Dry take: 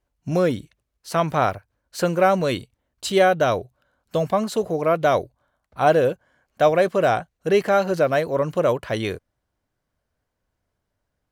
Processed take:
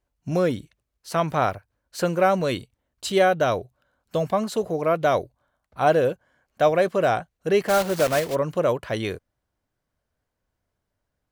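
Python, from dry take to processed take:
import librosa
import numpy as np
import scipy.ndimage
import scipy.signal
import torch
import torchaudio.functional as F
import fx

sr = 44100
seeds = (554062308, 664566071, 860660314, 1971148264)

y = fx.block_float(x, sr, bits=3, at=(7.68, 8.34), fade=0.02)
y = y * librosa.db_to_amplitude(-2.0)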